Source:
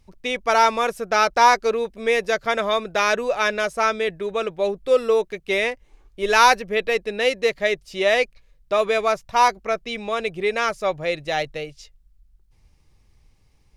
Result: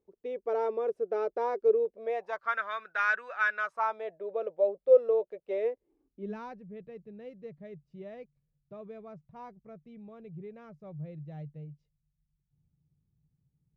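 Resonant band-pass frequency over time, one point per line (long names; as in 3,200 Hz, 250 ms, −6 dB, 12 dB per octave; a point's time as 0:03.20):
resonant band-pass, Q 5.5
0:01.85 420 Hz
0:02.59 1,500 Hz
0:03.52 1,500 Hz
0:04.24 550 Hz
0:05.50 550 Hz
0:06.56 150 Hz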